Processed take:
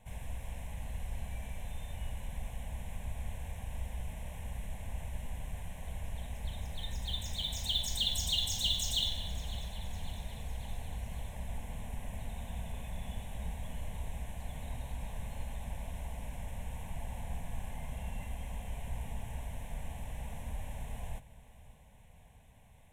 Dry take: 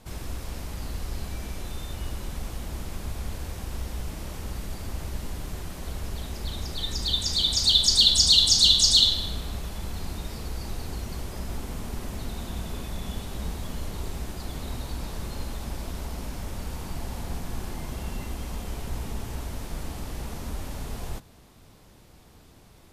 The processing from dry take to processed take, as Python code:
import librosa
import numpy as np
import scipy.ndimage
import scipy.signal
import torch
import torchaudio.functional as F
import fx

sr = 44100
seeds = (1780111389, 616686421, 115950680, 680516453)

y = fx.fixed_phaser(x, sr, hz=1300.0, stages=6)
y = fx.echo_feedback(y, sr, ms=555, feedback_pct=54, wet_db=-17.5)
y = np.interp(np.arange(len(y)), np.arange(len(y))[::2], y[::2])
y = y * 10.0 ** (-5.5 / 20.0)